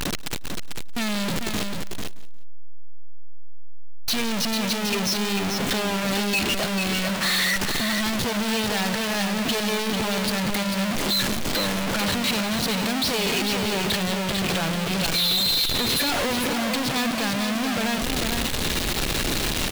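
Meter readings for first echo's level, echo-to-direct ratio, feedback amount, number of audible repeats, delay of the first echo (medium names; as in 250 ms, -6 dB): -18.0 dB, -5.0 dB, no regular repeats, 4, 178 ms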